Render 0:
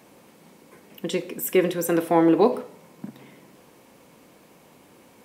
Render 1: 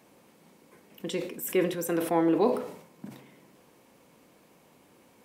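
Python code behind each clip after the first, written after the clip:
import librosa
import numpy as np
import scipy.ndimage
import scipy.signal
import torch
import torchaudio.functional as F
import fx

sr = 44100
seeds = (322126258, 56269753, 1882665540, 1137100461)

y = fx.sustainer(x, sr, db_per_s=86.0)
y = F.gain(torch.from_numpy(y), -6.5).numpy()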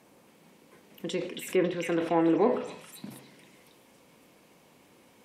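y = fx.echo_stepped(x, sr, ms=275, hz=2600.0, octaves=0.7, feedback_pct=70, wet_db=-0.5)
y = fx.env_lowpass_down(y, sr, base_hz=2500.0, full_db=-22.5)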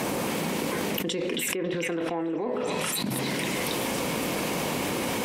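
y = fx.env_flatten(x, sr, amount_pct=100)
y = F.gain(torch.from_numpy(y), -8.5).numpy()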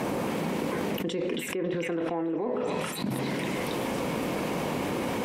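y = fx.high_shelf(x, sr, hz=2600.0, db=-10.5)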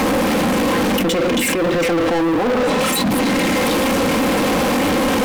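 y = x + 0.69 * np.pad(x, (int(3.8 * sr / 1000.0), 0))[:len(x)]
y = fx.leveller(y, sr, passes=5)
y = F.gain(torch.from_numpy(y), 2.0).numpy()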